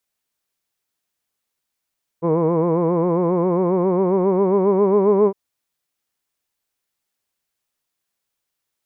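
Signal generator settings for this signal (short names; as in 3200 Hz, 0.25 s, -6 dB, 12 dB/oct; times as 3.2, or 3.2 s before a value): formant-synthesis vowel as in hood, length 3.11 s, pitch 162 Hz, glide +4 st, vibrato 7.4 Hz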